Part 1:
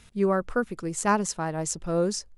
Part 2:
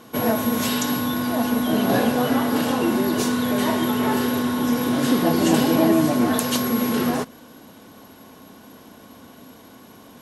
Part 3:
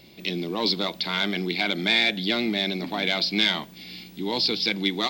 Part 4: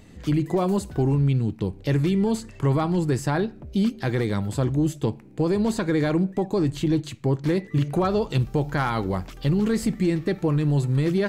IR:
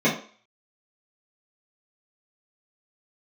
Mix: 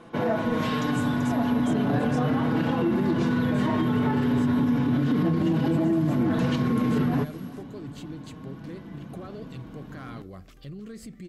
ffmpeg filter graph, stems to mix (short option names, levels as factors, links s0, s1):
-filter_complex "[0:a]volume=0.251[s0];[1:a]asubboost=boost=4.5:cutoff=250,flanger=delay=5.9:depth=1.2:regen=32:speed=0.33:shape=sinusoidal,volume=1.33,asplit=2[s1][s2];[s2]volume=0.0668[s3];[3:a]adelay=1200,volume=0.282[s4];[s0][s4]amix=inputs=2:normalize=0,asuperstop=centerf=890:order=4:qfactor=3.9,alimiter=level_in=2.99:limit=0.0631:level=0:latency=1:release=114,volume=0.335,volume=1[s5];[s1]lowpass=2500,alimiter=limit=0.299:level=0:latency=1:release=189,volume=1[s6];[s3]aecho=0:1:386:1[s7];[s5][s6][s7]amix=inputs=3:normalize=0,alimiter=limit=0.158:level=0:latency=1:release=41"